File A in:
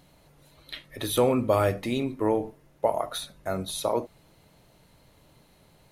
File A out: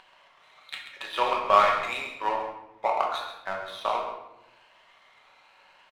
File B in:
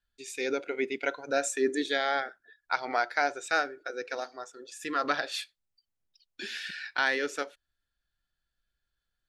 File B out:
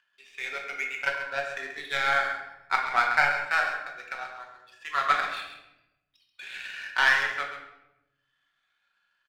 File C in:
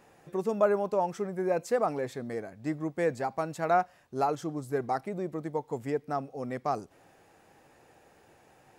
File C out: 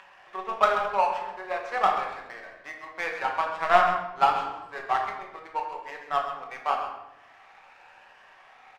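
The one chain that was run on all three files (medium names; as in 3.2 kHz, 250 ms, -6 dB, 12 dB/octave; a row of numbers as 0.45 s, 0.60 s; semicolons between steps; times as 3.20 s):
drifting ripple filter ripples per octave 1.3, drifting +0.87 Hz, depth 6 dB; Chebyshev band-pass 990–2900 Hz, order 2; upward compressor, threshold -45 dBFS; delay 133 ms -7.5 dB; power-law waveshaper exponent 1.4; simulated room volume 340 m³, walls mixed, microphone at 1.1 m; normalise loudness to -27 LUFS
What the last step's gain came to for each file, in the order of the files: +10.0 dB, +7.0 dB, +12.5 dB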